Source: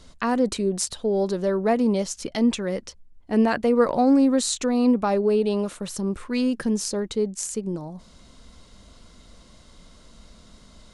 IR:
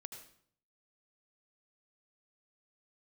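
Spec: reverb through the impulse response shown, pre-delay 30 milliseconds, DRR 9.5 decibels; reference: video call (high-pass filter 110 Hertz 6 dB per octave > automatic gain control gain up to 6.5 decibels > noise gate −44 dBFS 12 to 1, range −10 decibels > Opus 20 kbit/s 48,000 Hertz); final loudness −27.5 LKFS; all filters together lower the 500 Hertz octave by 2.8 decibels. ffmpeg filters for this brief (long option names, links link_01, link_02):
-filter_complex "[0:a]equalizer=frequency=500:width_type=o:gain=-3,asplit=2[link_01][link_02];[1:a]atrim=start_sample=2205,adelay=30[link_03];[link_02][link_03]afir=irnorm=-1:irlink=0,volume=-5dB[link_04];[link_01][link_04]amix=inputs=2:normalize=0,highpass=frequency=110:poles=1,dynaudnorm=maxgain=6.5dB,agate=range=-10dB:threshold=-44dB:ratio=12,volume=-2.5dB" -ar 48000 -c:a libopus -b:a 20k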